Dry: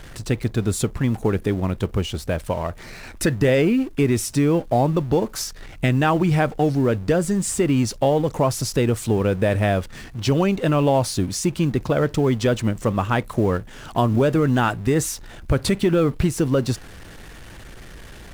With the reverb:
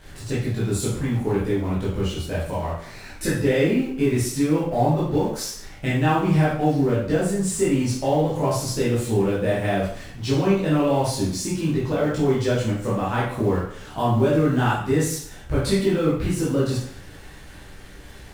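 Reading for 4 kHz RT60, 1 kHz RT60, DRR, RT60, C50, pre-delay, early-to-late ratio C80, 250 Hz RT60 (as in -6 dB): 0.55 s, 0.55 s, -8.5 dB, 0.60 s, 1.5 dB, 5 ms, 6.0 dB, 0.65 s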